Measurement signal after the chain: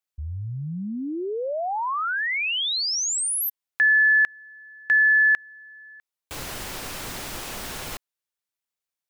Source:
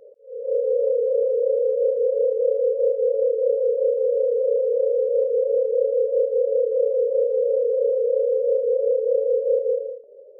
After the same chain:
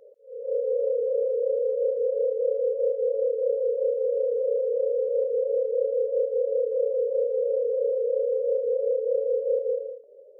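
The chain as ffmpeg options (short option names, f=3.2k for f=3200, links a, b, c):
-af "lowshelf=f=410:g=-6,volume=-2dB"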